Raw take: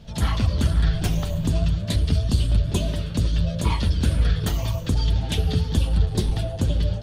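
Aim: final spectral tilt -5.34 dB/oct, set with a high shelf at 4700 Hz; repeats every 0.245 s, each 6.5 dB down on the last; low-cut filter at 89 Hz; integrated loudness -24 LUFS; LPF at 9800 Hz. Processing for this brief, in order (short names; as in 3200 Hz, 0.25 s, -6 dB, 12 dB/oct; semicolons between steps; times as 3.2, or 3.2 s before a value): HPF 89 Hz; LPF 9800 Hz; high shelf 4700 Hz +5 dB; feedback echo 0.245 s, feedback 47%, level -6.5 dB; gain +1 dB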